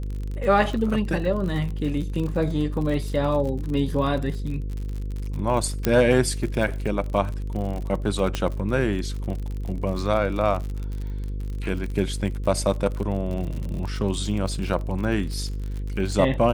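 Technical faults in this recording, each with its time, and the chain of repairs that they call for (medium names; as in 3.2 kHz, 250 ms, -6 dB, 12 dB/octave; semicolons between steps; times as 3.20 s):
buzz 50 Hz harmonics 10 -29 dBFS
crackle 46 per s -30 dBFS
5.85 s: pop -7 dBFS
8.35 s: pop -11 dBFS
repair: de-click; de-hum 50 Hz, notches 10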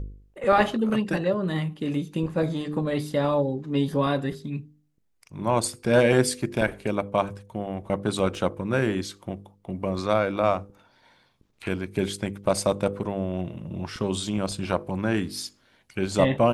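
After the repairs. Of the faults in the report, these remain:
8.35 s: pop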